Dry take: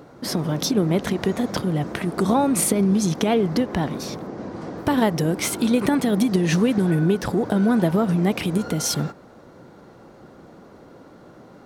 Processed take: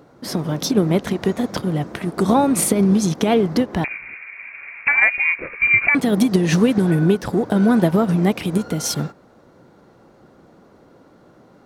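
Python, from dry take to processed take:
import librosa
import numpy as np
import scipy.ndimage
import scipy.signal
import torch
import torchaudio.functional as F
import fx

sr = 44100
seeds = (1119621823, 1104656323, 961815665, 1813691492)

y = fx.freq_invert(x, sr, carrier_hz=2600, at=(3.84, 5.95))
y = fx.upward_expand(y, sr, threshold_db=-32.0, expansion=1.5)
y = F.gain(torch.from_numpy(y), 4.5).numpy()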